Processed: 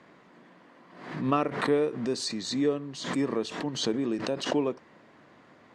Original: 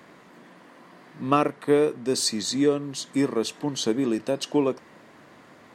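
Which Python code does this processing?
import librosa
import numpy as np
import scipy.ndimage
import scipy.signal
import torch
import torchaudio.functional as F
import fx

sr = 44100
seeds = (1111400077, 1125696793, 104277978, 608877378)

y = fx.air_absorb(x, sr, metres=78.0)
y = fx.pre_swell(y, sr, db_per_s=74.0)
y = y * librosa.db_to_amplitude(-5.0)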